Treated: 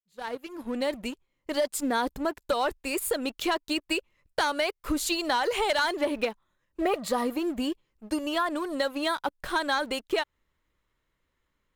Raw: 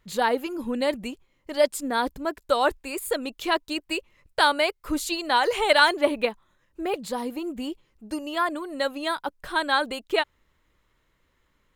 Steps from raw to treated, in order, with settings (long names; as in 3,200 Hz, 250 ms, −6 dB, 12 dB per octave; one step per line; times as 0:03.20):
fade in at the beginning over 1.53 s
leveller curve on the samples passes 2
downward compressor 6 to 1, threshold −19 dBFS, peak gain reduction 9 dB
0:06.81–0:07.33: hollow resonant body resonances 640/1,200/1,900 Hz, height 12 dB
level −4.5 dB